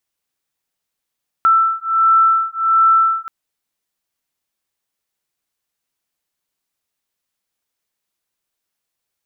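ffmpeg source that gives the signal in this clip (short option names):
-f lavfi -i "aevalsrc='0.2*(sin(2*PI*1330*t)+sin(2*PI*1331.4*t))':d=1.83:s=44100"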